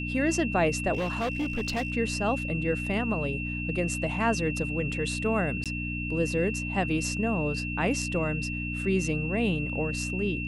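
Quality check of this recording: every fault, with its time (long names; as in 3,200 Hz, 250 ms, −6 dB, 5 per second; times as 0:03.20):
mains hum 60 Hz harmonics 5 −34 dBFS
whistle 2,700 Hz −34 dBFS
0:00.93–0:01.92: clipping −25 dBFS
0:05.64–0:05.66: drop-out 17 ms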